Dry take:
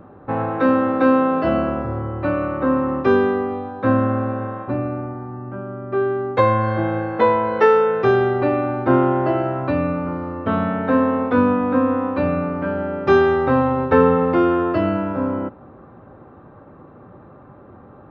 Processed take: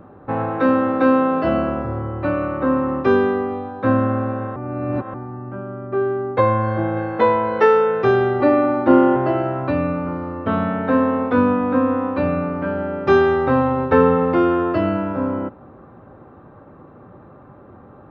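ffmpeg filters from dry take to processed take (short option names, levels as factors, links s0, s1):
-filter_complex "[0:a]asettb=1/sr,asplit=3[s0][s1][s2];[s0]atrim=end=5.874[s3];[s1]atrim=start=5.87:end=6.97,asetpts=PTS-STARTPTS,afade=t=in:d=0.004:c=qsin,afade=t=out:st=1.096:d=0.004:c=qsin,highshelf=f=2900:g=-9.5[s4];[s2]atrim=start=6.966[s5];[s3][s4]acrossfade=d=0.004:c1=hsin:c2=qsin[s6];[s6][s5]acrossfade=d=0.004:c1=qsin:c2=hsin,asettb=1/sr,asplit=3[s7][s8][s9];[s7]atrim=end=8.404[s10];[s8]atrim=start=8.4:end=9.16,asetpts=PTS-STARTPTS,afade=t=in:d=0.004:c=qsin,afade=t=out:st=0.756:d=0.004:c=qsin,aecho=1:1:3.5:0.84,atrim=end_sample=33516[s11];[s9]atrim=start=9.156[s12];[s10][s11]acrossfade=d=0.004:c1=hsin:c2=qsin[s13];[s13][s12]acrossfade=d=0.004:c1=qsin:c2=hsin,asplit=3[s14][s15][s16];[s14]atrim=end=4.562[s17];[s15]atrim=start=4.558:end=5.142,asetpts=PTS-STARTPTS,areverse[s18];[s16]atrim=start=5.138[s19];[s17][s18]acrossfade=d=0.004:c1=hsin:c2=hsin[s20];[s20][s19]acrossfade=d=0.004:c1=hsin:c2=hsin"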